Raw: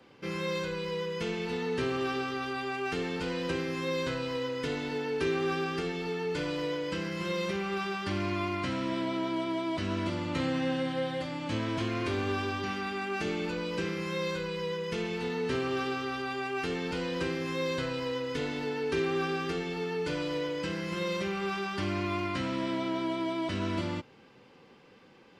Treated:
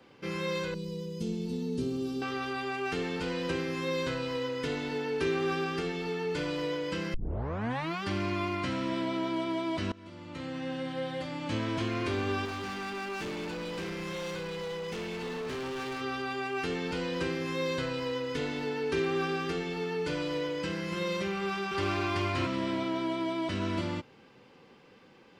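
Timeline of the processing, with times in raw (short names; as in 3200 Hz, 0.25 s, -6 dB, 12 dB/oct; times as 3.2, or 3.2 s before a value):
0.74–2.22 EQ curve 130 Hz 0 dB, 220 Hz +6 dB, 650 Hz -12 dB, 1800 Hz -24 dB, 4100 Hz -5 dB, 12000 Hz +3 dB
7.14 tape start 0.89 s
9.92–11.5 fade in, from -22.5 dB
12.45–16.01 hard clip -34 dBFS
21.33–22.08 echo throw 0.38 s, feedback 20%, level -0.5 dB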